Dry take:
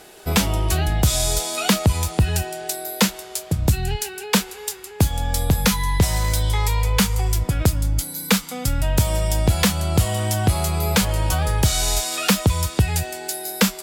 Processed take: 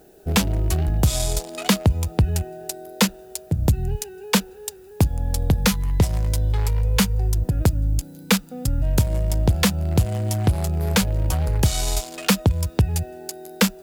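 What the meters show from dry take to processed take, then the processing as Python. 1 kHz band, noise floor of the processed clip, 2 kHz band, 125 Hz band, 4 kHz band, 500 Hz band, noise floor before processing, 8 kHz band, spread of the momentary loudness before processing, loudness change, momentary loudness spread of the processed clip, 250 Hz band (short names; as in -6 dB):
-4.5 dB, -44 dBFS, -3.0 dB, 0.0 dB, -3.5 dB, -2.0 dB, -38 dBFS, -4.5 dB, 7 LU, -1.0 dB, 7 LU, 0.0 dB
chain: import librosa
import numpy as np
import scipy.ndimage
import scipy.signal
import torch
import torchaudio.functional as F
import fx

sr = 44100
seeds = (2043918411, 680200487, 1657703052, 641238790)

y = fx.wiener(x, sr, points=41)
y = fx.dmg_noise_colour(y, sr, seeds[0], colour='blue', level_db=-60.0)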